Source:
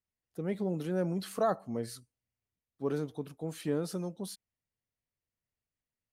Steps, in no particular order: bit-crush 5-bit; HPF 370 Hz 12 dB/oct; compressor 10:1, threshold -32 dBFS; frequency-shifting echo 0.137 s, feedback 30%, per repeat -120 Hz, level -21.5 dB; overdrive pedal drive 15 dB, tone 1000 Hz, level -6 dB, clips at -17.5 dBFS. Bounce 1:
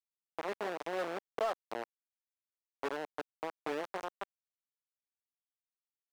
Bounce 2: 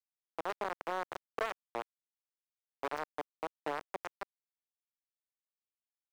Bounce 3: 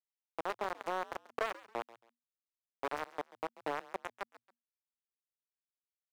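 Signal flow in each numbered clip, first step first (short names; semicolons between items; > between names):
frequency-shifting echo > bit-crush > compressor > HPF > overdrive pedal; compressor > frequency-shifting echo > bit-crush > HPF > overdrive pedal; compressor > bit-crush > frequency-shifting echo > HPF > overdrive pedal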